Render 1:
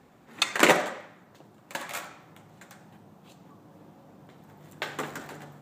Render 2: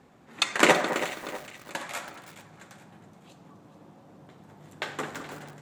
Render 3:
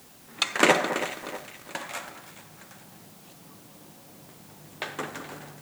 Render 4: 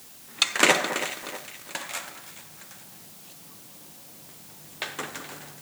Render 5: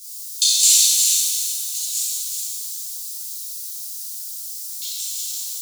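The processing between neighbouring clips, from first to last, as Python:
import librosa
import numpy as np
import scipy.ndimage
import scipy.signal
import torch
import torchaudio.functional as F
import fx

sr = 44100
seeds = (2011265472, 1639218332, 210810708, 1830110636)

y1 = scipy.signal.sosfilt(scipy.signal.butter(2, 11000.0, 'lowpass', fs=sr, output='sos'), x)
y1 = fx.echo_alternate(y1, sr, ms=212, hz=1800.0, feedback_pct=61, wet_db=-11.0)
y1 = fx.echo_crushed(y1, sr, ms=328, feedback_pct=35, bits=6, wet_db=-11.5)
y2 = fx.dmg_noise_colour(y1, sr, seeds[0], colour='white', level_db=-54.0)
y3 = fx.high_shelf(y2, sr, hz=2000.0, db=9.5)
y3 = F.gain(torch.from_numpy(y3), -3.0).numpy()
y4 = scipy.signal.sosfilt(scipy.signal.cheby2(4, 50, 1800.0, 'highpass', fs=sr, output='sos'), y3)
y4 = y4 + 10.0 ** (-6.5 / 20.0) * np.pad(y4, (int(370 * sr / 1000.0), 0))[:len(y4)]
y4 = fx.rev_shimmer(y4, sr, seeds[1], rt60_s=1.6, semitones=7, shimmer_db=-8, drr_db=-10.5)
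y4 = F.gain(torch.from_numpy(y4), 5.0).numpy()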